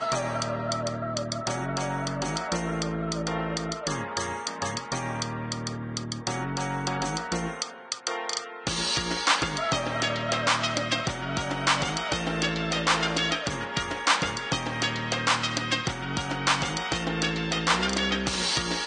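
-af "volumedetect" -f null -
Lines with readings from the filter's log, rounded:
mean_volume: -28.5 dB
max_volume: -8.8 dB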